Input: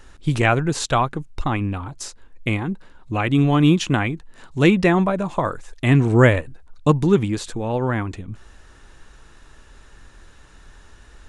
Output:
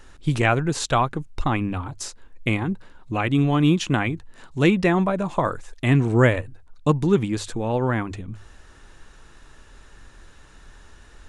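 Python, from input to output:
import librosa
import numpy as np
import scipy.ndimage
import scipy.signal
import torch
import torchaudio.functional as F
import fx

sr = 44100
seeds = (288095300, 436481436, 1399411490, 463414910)

p1 = fx.hum_notches(x, sr, base_hz=50, count=2)
p2 = fx.rider(p1, sr, range_db=4, speed_s=0.5)
p3 = p1 + F.gain(torch.from_numpy(p2), -3.0).numpy()
y = F.gain(torch.from_numpy(p3), -6.5).numpy()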